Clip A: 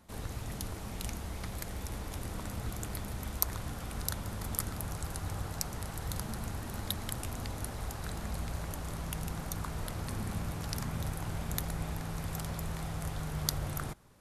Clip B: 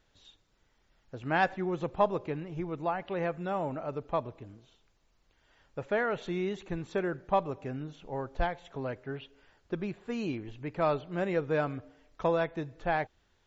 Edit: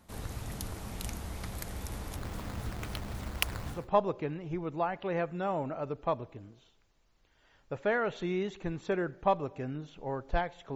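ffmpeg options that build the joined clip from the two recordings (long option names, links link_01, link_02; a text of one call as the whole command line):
ffmpeg -i cue0.wav -i cue1.wav -filter_complex "[0:a]asplit=3[link_01][link_02][link_03];[link_01]afade=type=out:start_time=2.16:duration=0.02[link_04];[link_02]acrusher=samples=9:mix=1:aa=0.000001:lfo=1:lforange=14.4:lforate=3.7,afade=type=in:start_time=2.16:duration=0.02,afade=type=out:start_time=3.89:duration=0.02[link_05];[link_03]afade=type=in:start_time=3.89:duration=0.02[link_06];[link_04][link_05][link_06]amix=inputs=3:normalize=0,apad=whole_dur=10.75,atrim=end=10.75,atrim=end=3.89,asetpts=PTS-STARTPTS[link_07];[1:a]atrim=start=1.75:end=8.81,asetpts=PTS-STARTPTS[link_08];[link_07][link_08]acrossfade=duration=0.2:curve1=tri:curve2=tri" out.wav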